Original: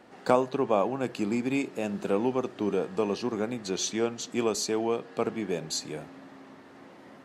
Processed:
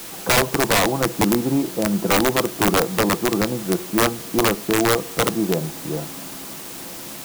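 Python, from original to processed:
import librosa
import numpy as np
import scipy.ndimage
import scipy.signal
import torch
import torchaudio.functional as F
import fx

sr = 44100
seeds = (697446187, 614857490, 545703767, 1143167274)

p1 = scipy.signal.sosfilt(scipy.signal.cheby1(3, 1.0, 1200.0, 'lowpass', fs=sr, output='sos'), x)
p2 = fx.low_shelf(p1, sr, hz=230.0, db=4.0)
p3 = p2 + 0.46 * np.pad(p2, (int(6.0 * sr / 1000.0), 0))[:len(p2)]
p4 = fx.quant_dither(p3, sr, seeds[0], bits=6, dither='triangular')
p5 = p3 + (p4 * 10.0 ** (-4.0 / 20.0))
p6 = (np.mod(10.0 ** (14.5 / 20.0) * p5 + 1.0, 2.0) - 1.0) / 10.0 ** (14.5 / 20.0)
y = p6 * 10.0 ** (4.5 / 20.0)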